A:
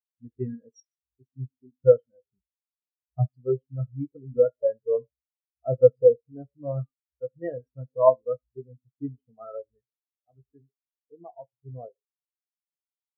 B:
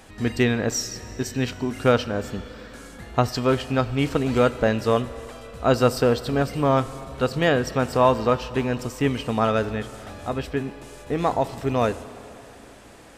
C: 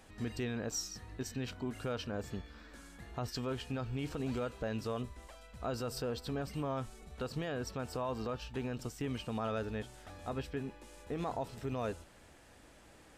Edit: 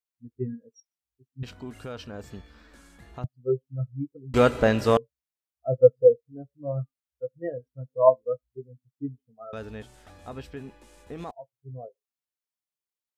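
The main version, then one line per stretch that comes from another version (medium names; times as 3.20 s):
A
1.43–3.24 s: from C
4.34–4.97 s: from B
9.53–11.31 s: from C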